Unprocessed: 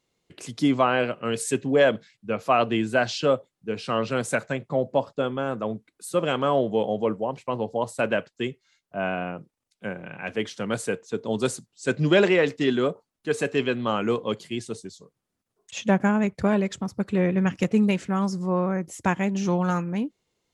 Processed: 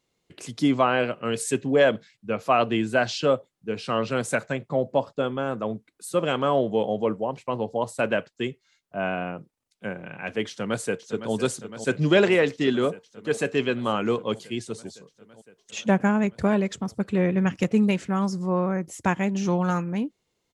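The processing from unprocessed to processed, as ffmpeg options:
-filter_complex "[0:a]asplit=2[s0][s1];[s1]afade=t=in:st=10.48:d=0.01,afade=t=out:st=11.33:d=0.01,aecho=0:1:510|1020|1530|2040|2550|3060|3570|4080|4590|5100|5610|6120:0.281838|0.225471|0.180377|0.144301|0.115441|0.0923528|0.0738822|0.0591058|0.0472846|0.0378277|0.0302622|0.0242097[s2];[s0][s2]amix=inputs=2:normalize=0"

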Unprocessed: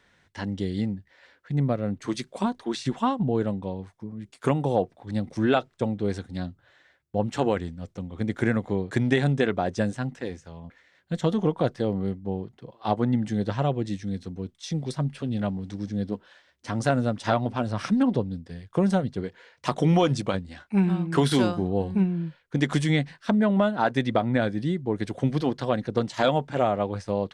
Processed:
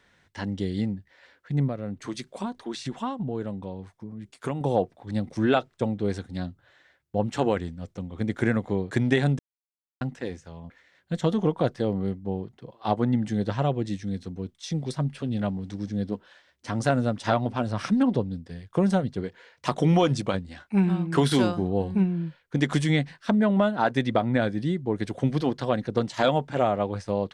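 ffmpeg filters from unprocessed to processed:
-filter_complex "[0:a]asettb=1/sr,asplit=3[s0][s1][s2];[s0]atrim=end=1.684[s3];[s1]atrim=start=1.68:end=4.61,asetpts=PTS-STARTPTS,afade=t=in:d=0.004:c=qsin,afade=t=out:st=2.926:d=0.004:c=qsin,acompressor=threshold=0.0158:ratio=1.5:attack=3.2:release=140:knee=1:detection=peak[s4];[s2]atrim=start=4.606[s5];[s3][s4]acrossfade=d=0.004:c1=hsin:c2=qsin[s6];[s6][s5]acrossfade=d=0.004:c1=qsin:c2=hsin,asplit=3[s7][s8][s9];[s7]atrim=end=9.39,asetpts=PTS-STARTPTS,afade=t=out:st=9.386:d=0.004:c=hsin[s10];[s8]atrim=start=9.39:end=10.01,asetpts=PTS-STARTPTS,volume=0[s11];[s9]atrim=start=10.01,asetpts=PTS-STARTPTS,afade=t=in:d=0.004:c=hsin[s12];[s10][s11][s12]concat=n=3:v=0:a=1"

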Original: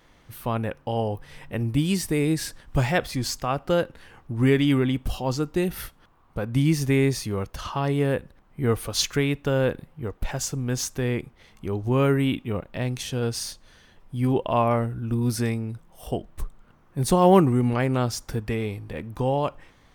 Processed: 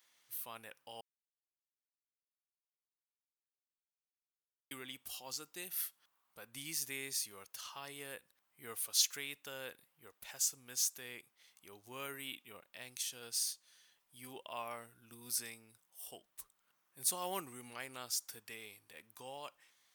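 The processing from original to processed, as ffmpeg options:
-filter_complex "[0:a]asplit=3[s0][s1][s2];[s0]atrim=end=1.01,asetpts=PTS-STARTPTS,afade=t=out:st=1.006:d=0.004:c=hsin[s3];[s1]atrim=start=1.01:end=4.71,asetpts=PTS-STARTPTS,volume=0[s4];[s2]atrim=start=4.71,asetpts=PTS-STARTPTS,afade=t=in:d=0.004:c=hsin[s5];[s3][s4][s5]concat=n=3:v=0:a=1,aderivative,volume=0.708"

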